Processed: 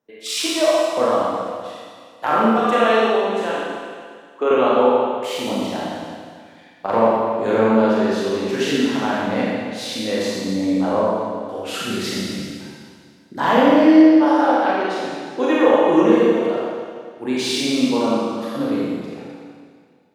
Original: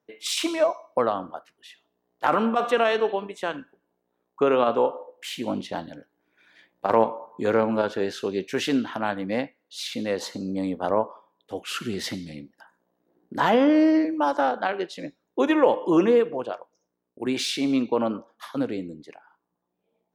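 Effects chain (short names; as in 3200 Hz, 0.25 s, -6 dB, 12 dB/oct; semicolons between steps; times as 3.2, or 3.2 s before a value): 3.51–4.51 HPF 270 Hz 24 dB/oct; Schroeder reverb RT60 2 s, combs from 28 ms, DRR -6.5 dB; gain -1 dB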